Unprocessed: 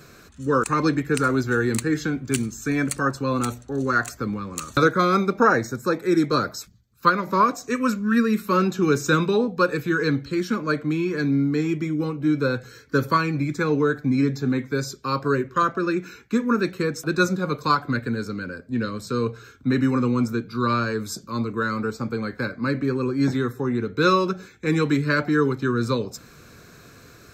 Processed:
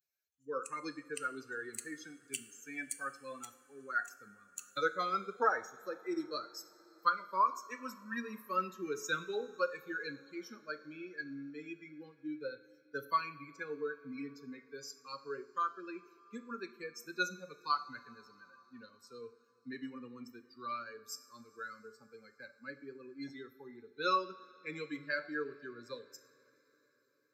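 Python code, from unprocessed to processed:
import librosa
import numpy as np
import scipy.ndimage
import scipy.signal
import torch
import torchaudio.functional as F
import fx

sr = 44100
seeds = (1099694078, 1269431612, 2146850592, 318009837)

y = fx.bin_expand(x, sr, power=2.0)
y = scipy.signal.sosfilt(scipy.signal.butter(2, 490.0, 'highpass', fs=sr, output='sos'), y)
y = fx.rev_double_slope(y, sr, seeds[0], early_s=0.59, late_s=4.9, knee_db=-18, drr_db=10.0)
y = y * librosa.db_to_amplitude(-8.0)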